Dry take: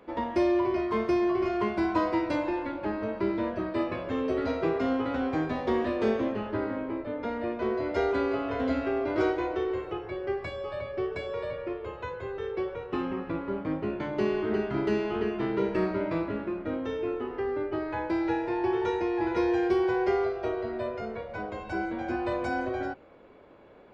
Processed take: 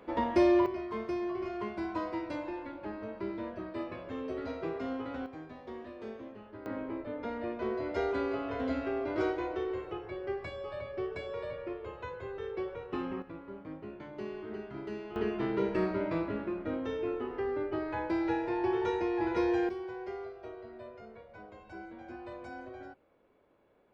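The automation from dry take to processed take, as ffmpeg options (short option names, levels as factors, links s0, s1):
-af "asetnsamples=n=441:p=0,asendcmd='0.66 volume volume -9dB;5.26 volume volume -17dB;6.66 volume volume -5dB;13.22 volume volume -13dB;15.16 volume volume -3dB;19.69 volume volume -14.5dB',volume=1.06"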